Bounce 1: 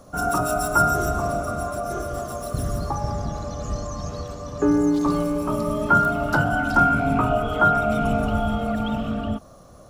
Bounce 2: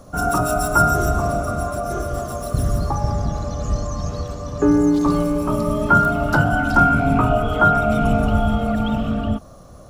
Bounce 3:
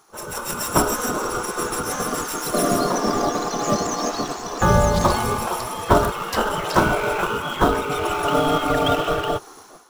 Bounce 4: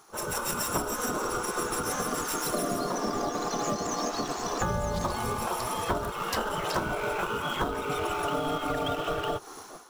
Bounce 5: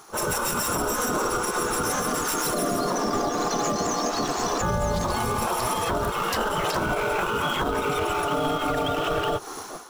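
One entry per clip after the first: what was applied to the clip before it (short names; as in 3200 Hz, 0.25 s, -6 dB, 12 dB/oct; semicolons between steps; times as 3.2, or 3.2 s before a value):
low shelf 150 Hz +5.5 dB; gain +2.5 dB
spectral gate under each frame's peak -15 dB weak; AGC gain up to 13 dB; in parallel at -9.5 dB: sample-rate reducer 4600 Hz, jitter 20%; on the sum: gain -2.5 dB
compressor 6:1, threshold -27 dBFS, peak gain reduction 16 dB
limiter -24 dBFS, peak gain reduction 9.5 dB; gain +8 dB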